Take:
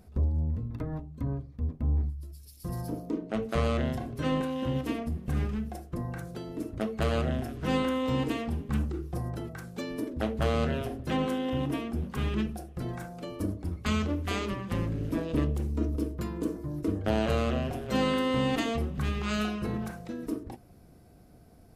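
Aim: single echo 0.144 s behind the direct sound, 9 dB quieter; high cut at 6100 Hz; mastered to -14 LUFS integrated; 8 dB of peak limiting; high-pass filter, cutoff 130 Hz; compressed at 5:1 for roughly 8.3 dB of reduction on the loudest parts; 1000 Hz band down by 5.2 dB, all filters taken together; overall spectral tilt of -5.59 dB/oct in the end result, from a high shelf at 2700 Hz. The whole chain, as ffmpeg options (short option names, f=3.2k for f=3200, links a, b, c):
-af "highpass=130,lowpass=6.1k,equalizer=f=1k:t=o:g=-8,highshelf=f=2.7k:g=6,acompressor=threshold=-34dB:ratio=5,alimiter=level_in=4.5dB:limit=-24dB:level=0:latency=1,volume=-4.5dB,aecho=1:1:144:0.355,volume=25dB"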